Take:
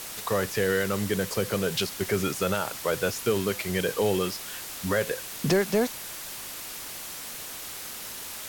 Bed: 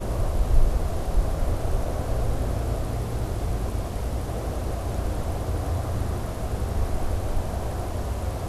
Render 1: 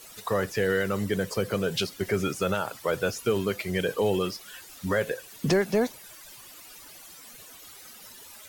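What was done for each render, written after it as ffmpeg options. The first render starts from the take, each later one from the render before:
-af "afftdn=nr=14:nf=-39"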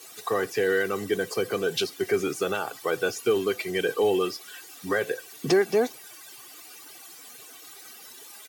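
-af "highpass=f=140:w=0.5412,highpass=f=140:w=1.3066,aecho=1:1:2.6:0.58"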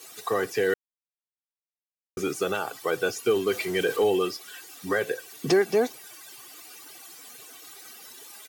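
-filter_complex "[0:a]asettb=1/sr,asplit=3[s0][s1][s2];[s0]atrim=end=3.474[s3];[s1]atrim=start=3.47:end=4.04,asetpts=PTS-STARTPTS,afade=t=in:d=0.004:c=qsin,afade=t=out:st=0.566:d=0.004:c=qsin,aeval=exprs='val(0)+0.5*0.0158*sgn(val(0))':c=same[s4];[s2]atrim=start=4.036[s5];[s3][s4]acrossfade=d=0.004:c1=hsin:c2=qsin[s6];[s6][s5]acrossfade=d=0.004:c1=qsin:c2=hsin,asplit=3[s7][s8][s9];[s7]atrim=end=0.74,asetpts=PTS-STARTPTS,afade=t=out:st=0.736:d=0.004:c=hsin[s10];[s8]atrim=start=0.74:end=2.17,asetpts=PTS-STARTPTS,volume=0[s11];[s9]atrim=start=2.17,asetpts=PTS-STARTPTS,afade=t=in:d=0.004:c=hsin[s12];[s10][s11][s12]concat=n=3:v=0:a=1"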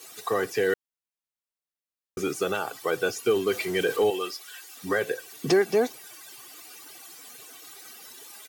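-filter_complex "[0:a]asettb=1/sr,asplit=3[s0][s1][s2];[s0]atrim=end=4.104[s3];[s1]atrim=start=4.1:end=4.77,asetpts=PTS-STARTPTS,afade=t=in:d=0.004:c=qsin,afade=t=out:st=0.666:d=0.004:c=qsin,highpass=f=800:p=1[s4];[s2]atrim=start=4.766[s5];[s3][s4]acrossfade=d=0.004:c1=hsin:c2=qsin[s6];[s6][s5]acrossfade=d=0.004:c1=qsin:c2=hsin"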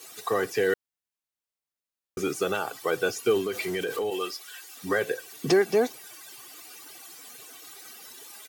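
-filter_complex "[0:a]asettb=1/sr,asplit=3[s0][s1][s2];[s0]atrim=end=3.414[s3];[s1]atrim=start=3.41:end=4.12,asetpts=PTS-STARTPTS,afade=t=in:d=0.004:c=qsin,afade=t=out:st=0.706:d=0.004:c=qsin,acompressor=threshold=0.0501:ratio=4:attack=3.2:release=140:knee=1:detection=peak[s4];[s2]atrim=start=4.116[s5];[s3][s4]acrossfade=d=0.004:c1=hsin:c2=qsin[s6];[s6][s5]acrossfade=d=0.004:c1=qsin:c2=hsin"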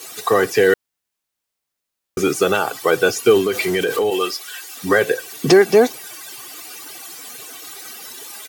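-af "volume=3.35,alimiter=limit=0.794:level=0:latency=1"

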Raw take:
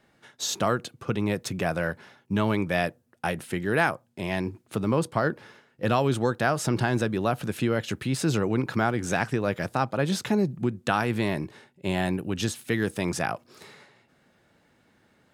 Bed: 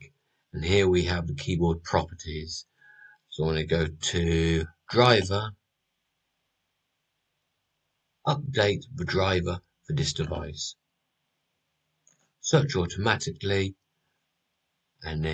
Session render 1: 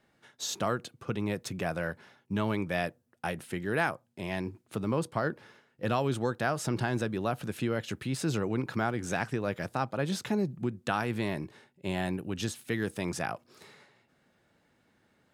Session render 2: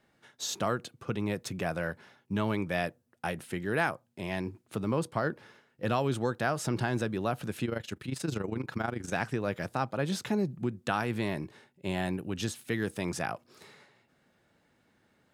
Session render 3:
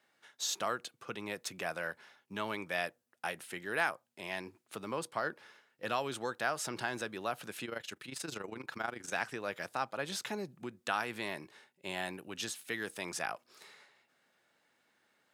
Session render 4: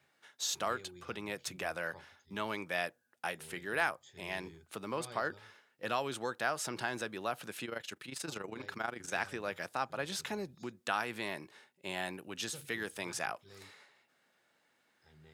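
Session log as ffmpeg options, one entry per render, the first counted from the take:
-af "volume=0.531"
-filter_complex "[0:a]asettb=1/sr,asplit=3[s0][s1][s2];[s0]atrim=end=7.654[s3];[s1]atrim=start=7.65:end=9.13,asetpts=PTS-STARTPTS,afade=t=in:d=0.004:c=qsin,afade=t=out:st=1.476:d=0.004:c=qsin,tremolo=f=25:d=0.75[s4];[s2]atrim=start=9.126[s5];[s3][s4]acrossfade=d=0.004:c1=hsin:c2=qsin[s6];[s6][s5]acrossfade=d=0.004:c1=qsin:c2=hsin"
-af "highpass=f=970:p=1"
-filter_complex "[1:a]volume=0.0282[s0];[0:a][s0]amix=inputs=2:normalize=0"

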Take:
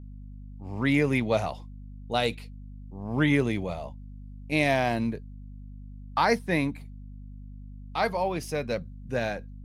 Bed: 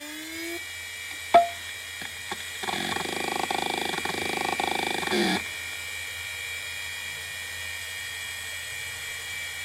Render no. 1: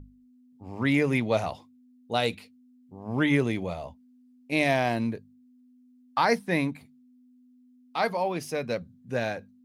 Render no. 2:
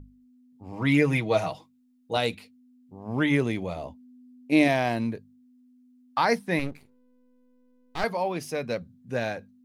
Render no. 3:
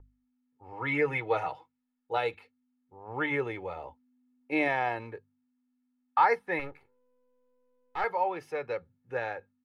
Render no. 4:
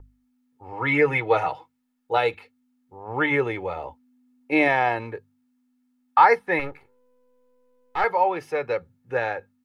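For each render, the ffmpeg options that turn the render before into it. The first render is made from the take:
-af "bandreject=f=50:t=h:w=6,bandreject=f=100:t=h:w=6,bandreject=f=150:t=h:w=6,bandreject=f=200:t=h:w=6"
-filter_complex "[0:a]asettb=1/sr,asplit=3[s0][s1][s2];[s0]atrim=end=0.724[s3];[s1]atrim=start=0.72:end=2.17,asetpts=PTS-STARTPTS,afade=t=in:d=0.004:c=qsin,afade=t=out:st=1.446:d=0.004:c=qsin,aecho=1:1:6.3:0.65,atrim=end_sample=63945[s4];[s2]atrim=start=2.166[s5];[s3][s4]acrossfade=d=0.004:c1=hsin:c2=qsin[s6];[s6][s5]acrossfade=d=0.004:c1=qsin:c2=hsin,asettb=1/sr,asplit=3[s7][s8][s9];[s7]atrim=end=3.764[s10];[s8]atrim=start=3.76:end=4.68,asetpts=PTS-STARTPTS,afade=t=in:d=0.004:c=qsin,afade=t=out:st=0.916:d=0.004:c=qsin,equalizer=f=310:w=1.5:g=9[s11];[s9]atrim=start=4.676[s12];[s10][s11]acrossfade=d=0.004:c1=hsin:c2=qsin[s13];[s13][s12]acrossfade=d=0.004:c1=qsin:c2=hsin,asettb=1/sr,asplit=3[s14][s15][s16];[s14]atrim=end=6.594[s17];[s15]atrim=start=6.59:end=8.04,asetpts=PTS-STARTPTS,afade=t=in:d=0.004:c=qsin,afade=t=out:st=1.446:d=0.004:c=qsin,aeval=exprs='max(val(0),0)':c=same[s18];[s16]atrim=start=8.036[s19];[s17][s18]acrossfade=d=0.004:c1=hsin:c2=qsin[s20];[s20][s19]acrossfade=d=0.004:c1=qsin:c2=hsin"
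-filter_complex "[0:a]acrossover=split=560 2300:gain=0.224 1 0.0794[s0][s1][s2];[s0][s1][s2]amix=inputs=3:normalize=0,aecho=1:1:2.3:0.71"
-af "volume=2.51"

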